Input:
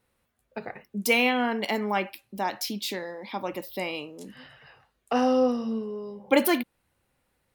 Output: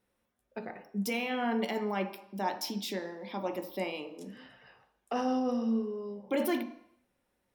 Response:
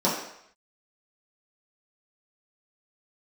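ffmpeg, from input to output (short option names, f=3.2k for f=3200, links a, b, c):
-filter_complex "[0:a]alimiter=limit=-18.5dB:level=0:latency=1:release=13,asplit=2[a][b];[1:a]atrim=start_sample=2205,lowpass=8.4k[c];[b][c]afir=irnorm=-1:irlink=0,volume=-19dB[d];[a][d]amix=inputs=2:normalize=0,volume=-7dB"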